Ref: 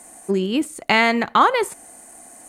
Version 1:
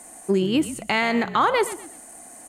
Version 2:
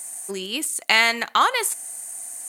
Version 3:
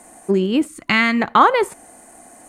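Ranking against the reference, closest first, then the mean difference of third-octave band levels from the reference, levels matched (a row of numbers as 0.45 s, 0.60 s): 3, 1, 2; 2.5 dB, 4.5 dB, 7.0 dB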